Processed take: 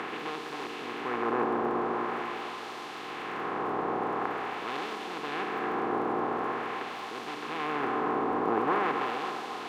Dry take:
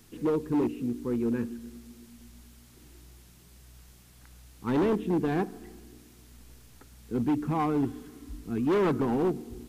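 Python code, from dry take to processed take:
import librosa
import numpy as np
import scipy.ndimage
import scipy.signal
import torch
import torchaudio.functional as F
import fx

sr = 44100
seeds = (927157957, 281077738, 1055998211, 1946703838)

p1 = fx.bin_compress(x, sr, power=0.2)
p2 = fx.filter_lfo_bandpass(p1, sr, shape='sine', hz=0.45, low_hz=880.0, high_hz=4400.0, q=1.0)
p3 = fx.dmg_crackle(p2, sr, seeds[0], per_s=36.0, level_db=-46.0)
y = p3 + fx.echo_banded(p3, sr, ms=269, feedback_pct=69, hz=900.0, wet_db=-8.0, dry=0)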